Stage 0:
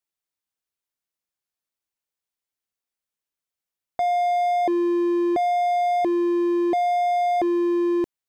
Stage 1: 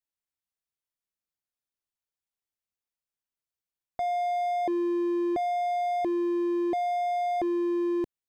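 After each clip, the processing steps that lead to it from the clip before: low shelf 160 Hz +7 dB; gain -7 dB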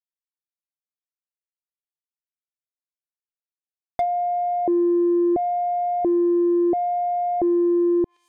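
requantised 8-bit, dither none; thin delay 0.123 s, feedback 55%, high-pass 3100 Hz, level -13 dB; treble ducked by the level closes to 660 Hz, closed at -25.5 dBFS; gain +8.5 dB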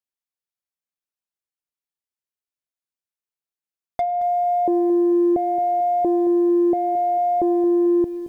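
reverb RT60 0.90 s, pre-delay 65 ms, DRR 21.5 dB; lo-fi delay 0.222 s, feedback 35%, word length 8-bit, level -13 dB

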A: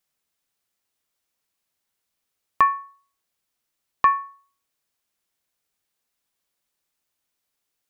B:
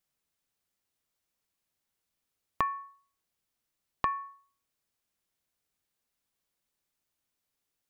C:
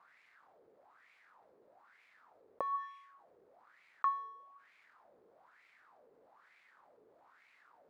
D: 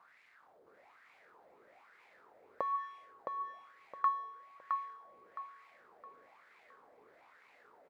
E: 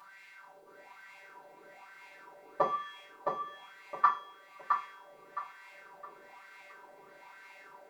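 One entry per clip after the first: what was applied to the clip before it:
compressor 6:1, threshold -22 dBFS, peak gain reduction 9.5 dB; low shelf 310 Hz +6 dB; gain -5 dB
median filter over 15 samples; wah 1.1 Hz 430–2300 Hz, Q 5.5; fast leveller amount 50%; gain +1 dB
feedback echo 0.665 s, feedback 33%, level -4.5 dB; gain +1.5 dB
robotiser 194 Hz; FDN reverb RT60 0.32 s, low-frequency decay 1.35×, high-frequency decay 1×, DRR -6.5 dB; gain +8.5 dB

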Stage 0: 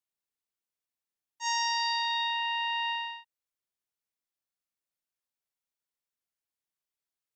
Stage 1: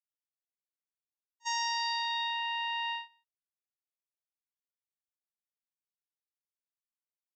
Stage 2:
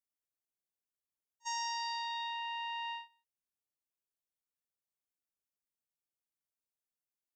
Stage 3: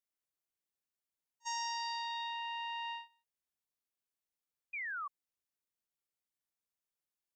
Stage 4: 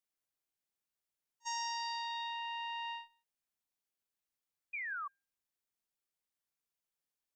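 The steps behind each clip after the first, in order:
gate -32 dBFS, range -23 dB; gain -3 dB
ten-band EQ 1000 Hz -3 dB, 2000 Hz -6 dB, 4000 Hz -7 dB
painted sound fall, 4.73–5.08, 1100–2500 Hz -39 dBFS; gain -1 dB
resonator 800 Hz, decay 0.39 s, mix 60%; gain +7.5 dB

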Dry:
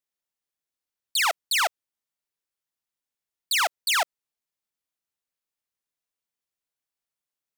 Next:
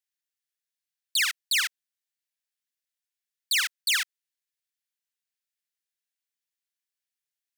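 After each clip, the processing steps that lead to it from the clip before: Chebyshev high-pass 1600 Hz, order 4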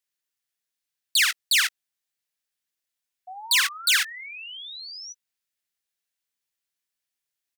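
painted sound rise, 3.27–5.13, 720–6000 Hz -43 dBFS; doubler 16 ms -13 dB; gain +4 dB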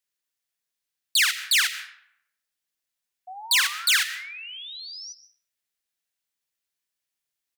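reverb RT60 0.75 s, pre-delay 90 ms, DRR 13 dB

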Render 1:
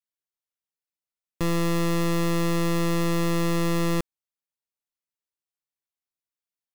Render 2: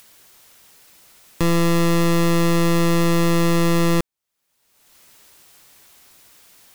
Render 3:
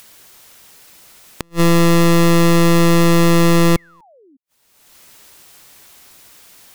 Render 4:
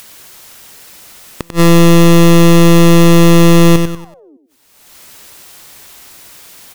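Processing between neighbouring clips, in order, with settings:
upward compressor, threshold -30 dBFS; gain +6.5 dB
painted sound fall, 3.76–4.37, 250–2300 Hz -14 dBFS; flipped gate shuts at -16 dBFS, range -41 dB; gain +5.5 dB
on a send: feedback echo 95 ms, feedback 35%, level -9.5 dB; on the sum: soft clip -10 dBFS, distortion -22 dB; gain +7 dB

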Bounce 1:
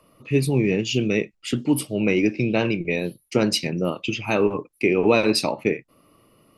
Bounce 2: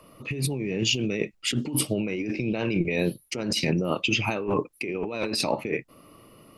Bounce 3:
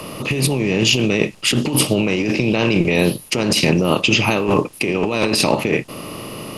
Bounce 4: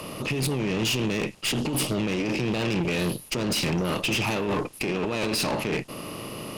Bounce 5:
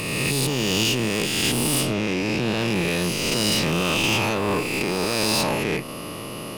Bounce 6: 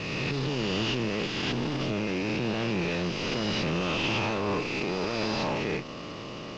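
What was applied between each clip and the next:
negative-ratio compressor -27 dBFS, ratio -1
per-bin compression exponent 0.6; gain +6.5 dB
tube stage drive 19 dB, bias 0.5; gain -3 dB
spectral swells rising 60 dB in 2.11 s
CVSD 32 kbps; gain -5 dB

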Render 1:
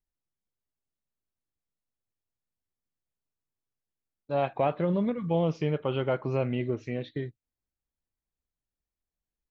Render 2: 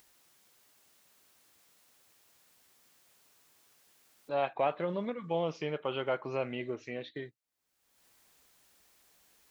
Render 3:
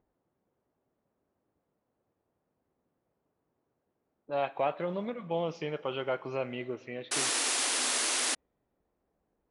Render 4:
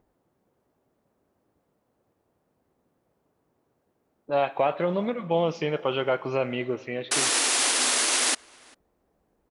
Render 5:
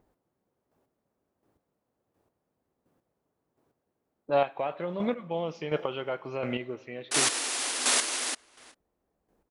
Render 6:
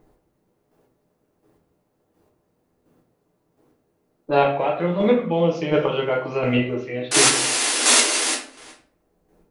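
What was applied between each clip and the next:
HPF 670 Hz 6 dB/oct; upward compressor, threshold -42 dBFS
low-pass opened by the level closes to 510 Hz, open at -31.5 dBFS; Schroeder reverb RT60 2.6 s, combs from 28 ms, DRR 19 dB; painted sound noise, 7.11–8.35, 230–11000 Hz -30 dBFS
limiter -21.5 dBFS, peak gain reduction 4 dB; outdoor echo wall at 68 m, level -25 dB; gain +8 dB
chopper 1.4 Hz, depth 60%, duty 20%
shoebox room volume 43 m³, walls mixed, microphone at 0.74 m; gain +6.5 dB

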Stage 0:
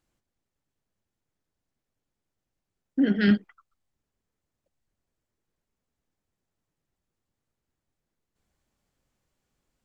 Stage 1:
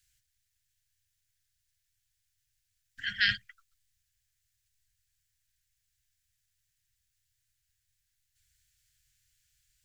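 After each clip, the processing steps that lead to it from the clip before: Chebyshev band-stop 120–1600 Hz, order 4; high shelf 3300 Hz +11 dB; gain +2.5 dB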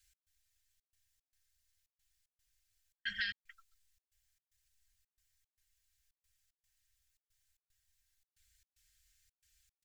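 comb 3.8 ms, depth 91%; compressor 12:1, threshold -31 dBFS, peak gain reduction 13.5 dB; step gate "x.xxxx.x" 113 bpm -60 dB; gain -3 dB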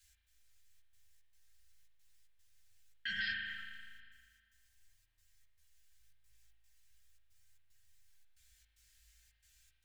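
chorus voices 2, 0.39 Hz, delay 15 ms, depth 5 ms; limiter -37 dBFS, peak gain reduction 10.5 dB; spring tank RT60 1.9 s, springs 37 ms, chirp 60 ms, DRR 1 dB; gain +7.5 dB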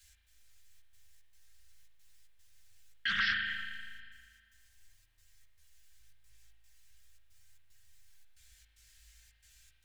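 Doppler distortion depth 0.24 ms; gain +7 dB

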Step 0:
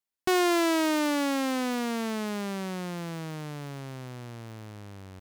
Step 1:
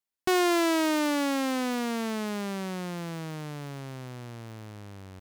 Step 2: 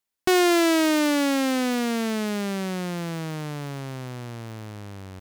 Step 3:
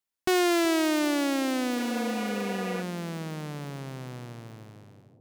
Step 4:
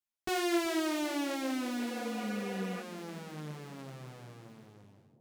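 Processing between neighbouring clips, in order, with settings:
nothing audible
dynamic EQ 1000 Hz, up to -5 dB, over -43 dBFS, Q 2.2; gain +5.5 dB
ending faded out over 1.06 s; analogue delay 0.375 s, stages 2048, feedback 60%, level -14.5 dB; spectral repair 1.8–2.79, 410–3100 Hz before; gain -4.5 dB
ensemble effect; gain -4 dB

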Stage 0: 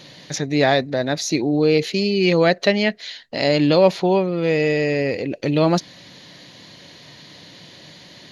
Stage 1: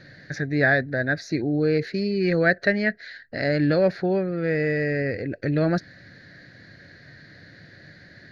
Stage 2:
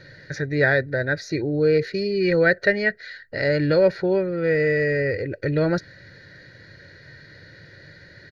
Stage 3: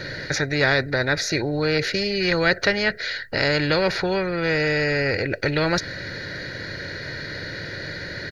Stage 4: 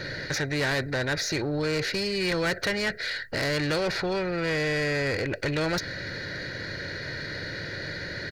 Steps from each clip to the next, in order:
EQ curve 100 Hz 0 dB, 170 Hz -8 dB, 690 Hz -11 dB, 1000 Hz -24 dB, 1600 Hz +4 dB, 3100 Hz -27 dB, 4400 Hz -14 dB, 7100 Hz -27 dB; gain +4.5 dB
comb 2.1 ms, depth 56%; gain +1 dB
spectral compressor 2:1; gain +1 dB
soft clip -20 dBFS, distortion -11 dB; gain -2 dB

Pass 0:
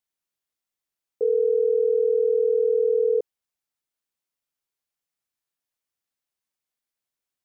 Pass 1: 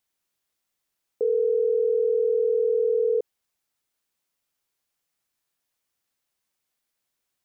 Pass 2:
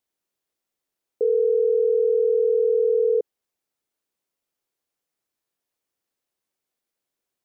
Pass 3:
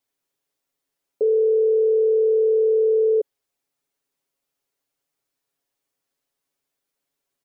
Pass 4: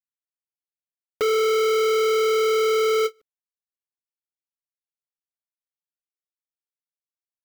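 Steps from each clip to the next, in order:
limiter -24 dBFS, peak gain reduction 9.5 dB; gain +7 dB
bell 400 Hz +8 dB 1.8 oct; gain -5 dB
comb 7.2 ms, depth 92%
companded quantiser 2-bit; ending taper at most 560 dB/s; gain +5 dB

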